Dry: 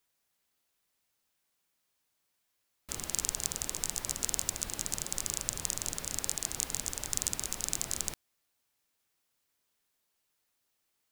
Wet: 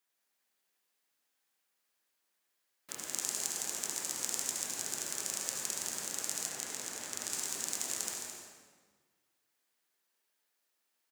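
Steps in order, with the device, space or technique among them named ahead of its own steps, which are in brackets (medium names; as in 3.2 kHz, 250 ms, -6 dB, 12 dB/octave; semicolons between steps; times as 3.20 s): stadium PA (high-pass 240 Hz 12 dB/octave; peaking EQ 1.7 kHz +4 dB 0.42 oct; loudspeakers at several distances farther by 57 m -11 dB, 74 m -9 dB; reverberation RT60 1.6 s, pre-delay 65 ms, DRR 1 dB); 6.49–7.30 s: treble shelf 4.9 kHz -5.5 dB; trim -4.5 dB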